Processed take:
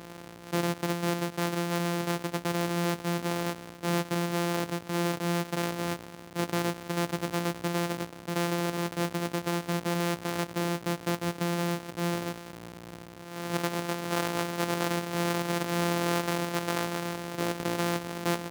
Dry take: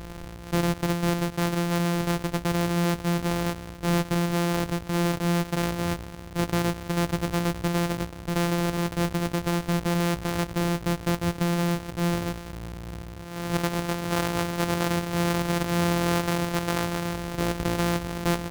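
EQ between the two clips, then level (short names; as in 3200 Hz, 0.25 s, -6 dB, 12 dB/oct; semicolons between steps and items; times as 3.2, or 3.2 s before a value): HPF 190 Hz 12 dB/oct; -2.5 dB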